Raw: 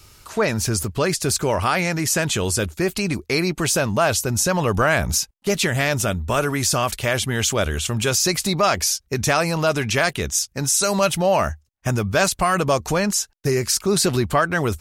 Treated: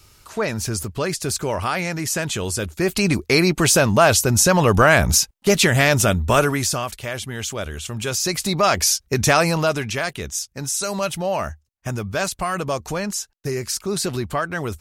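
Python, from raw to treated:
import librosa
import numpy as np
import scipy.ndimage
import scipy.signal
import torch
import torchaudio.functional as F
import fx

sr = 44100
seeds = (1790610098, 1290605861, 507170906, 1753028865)

y = fx.gain(x, sr, db=fx.line((2.62, -3.0), (3.05, 4.5), (6.39, 4.5), (6.93, -7.0), (7.79, -7.0), (8.89, 3.0), (9.48, 3.0), (9.96, -5.0)))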